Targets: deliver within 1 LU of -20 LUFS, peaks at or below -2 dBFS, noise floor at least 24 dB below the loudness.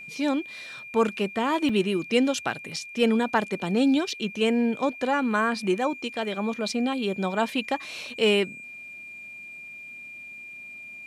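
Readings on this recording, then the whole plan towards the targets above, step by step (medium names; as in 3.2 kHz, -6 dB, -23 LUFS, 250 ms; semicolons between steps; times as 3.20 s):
dropouts 2; longest dropout 4.1 ms; steady tone 2.4 kHz; tone level -39 dBFS; loudness -25.5 LUFS; peak level -9.0 dBFS; loudness target -20.0 LUFS
-> interpolate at 1.69/2.76 s, 4.1 ms; band-stop 2.4 kHz, Q 30; trim +5.5 dB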